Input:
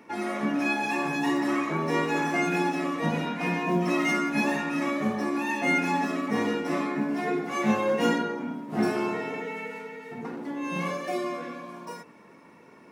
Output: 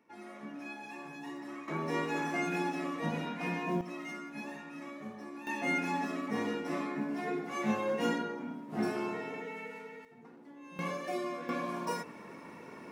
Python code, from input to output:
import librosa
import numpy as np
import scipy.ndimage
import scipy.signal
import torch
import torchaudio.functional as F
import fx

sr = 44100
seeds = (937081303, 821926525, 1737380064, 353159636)

y = fx.gain(x, sr, db=fx.steps((0.0, -17.5), (1.68, -7.5), (3.81, -17.0), (5.47, -7.5), (10.05, -18.5), (10.79, -6.0), (11.49, 4.0)))